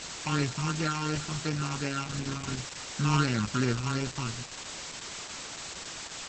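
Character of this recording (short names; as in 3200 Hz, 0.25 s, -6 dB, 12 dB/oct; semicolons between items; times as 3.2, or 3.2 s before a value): a buzz of ramps at a fixed pitch in blocks of 32 samples; phasing stages 8, 2.8 Hz, lowest notch 480–1100 Hz; a quantiser's noise floor 6-bit, dither triangular; Opus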